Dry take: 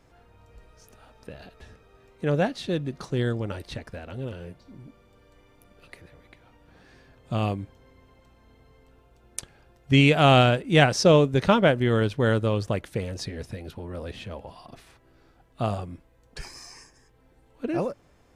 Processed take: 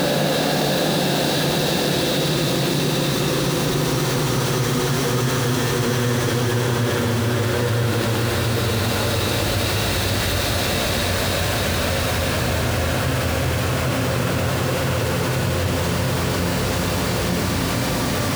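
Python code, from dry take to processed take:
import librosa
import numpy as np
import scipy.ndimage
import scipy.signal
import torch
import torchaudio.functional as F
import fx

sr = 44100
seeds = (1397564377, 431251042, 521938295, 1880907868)

y = x + 0.5 * 10.0 ** (-22.5 / 20.0) * np.sign(x)
y = scipy.signal.sosfilt(scipy.signal.butter(2, 59.0, 'highpass', fs=sr, output='sos'), y)
y = fx.peak_eq(y, sr, hz=300.0, db=-3.0, octaves=2.8)
y = fx.paulstretch(y, sr, seeds[0], factor=8.0, window_s=1.0, from_s=2.44)
y = fx.env_flatten(y, sr, amount_pct=70)
y = y * librosa.db_to_amplitude(2.5)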